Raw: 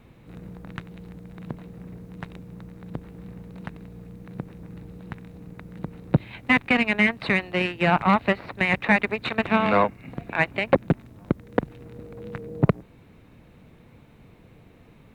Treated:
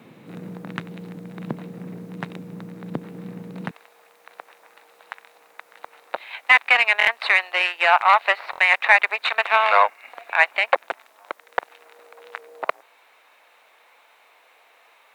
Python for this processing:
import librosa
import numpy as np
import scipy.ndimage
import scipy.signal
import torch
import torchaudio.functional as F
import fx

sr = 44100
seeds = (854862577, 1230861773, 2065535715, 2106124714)

y = fx.highpass(x, sr, hz=fx.steps((0.0, 160.0), (3.71, 710.0)), slope=24)
y = fx.buffer_glitch(y, sr, at_s=(6.98, 8.51), block=1024, repeats=3)
y = F.gain(torch.from_numpy(y), 7.0).numpy()